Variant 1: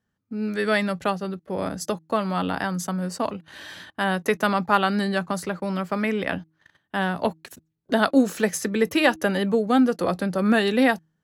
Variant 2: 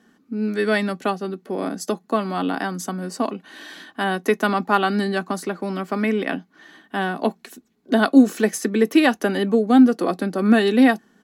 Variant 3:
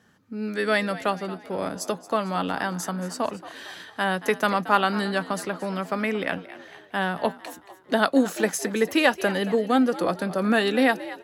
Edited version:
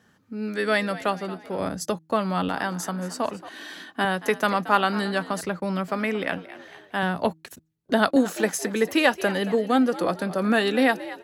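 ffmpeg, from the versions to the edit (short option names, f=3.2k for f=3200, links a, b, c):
-filter_complex "[0:a]asplit=3[a][b][c];[2:a]asplit=5[d][e][f][g][h];[d]atrim=end=1.602[i];[a]atrim=start=1.598:end=2.492[j];[e]atrim=start=2.488:end=3.492[k];[1:a]atrim=start=3.488:end=4.052[l];[f]atrim=start=4.048:end=5.412[m];[b]atrim=start=5.408:end=5.882[n];[g]atrim=start=5.878:end=7.032[o];[c]atrim=start=7.028:end=8.162[p];[h]atrim=start=8.158[q];[i][j]acrossfade=d=0.004:c1=hsin:c2=hsin[r];[r][k]acrossfade=d=0.004:c1=hsin:c2=hsin[s];[s][l]acrossfade=d=0.004:c1=hsin:c2=hsin[t];[t][m]acrossfade=d=0.004:c1=hsin:c2=hsin[u];[u][n]acrossfade=d=0.004:c1=hsin:c2=hsin[v];[v][o]acrossfade=d=0.004:c1=hsin:c2=hsin[w];[w][p]acrossfade=d=0.004:c1=hsin:c2=hsin[x];[x][q]acrossfade=d=0.004:c1=hsin:c2=hsin"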